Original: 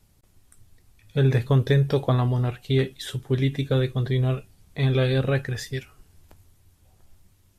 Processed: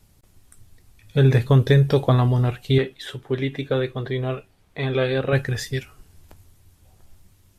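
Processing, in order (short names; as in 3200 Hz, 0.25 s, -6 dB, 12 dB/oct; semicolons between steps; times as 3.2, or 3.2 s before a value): 2.78–5.33 tone controls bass -10 dB, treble -11 dB; gain +4 dB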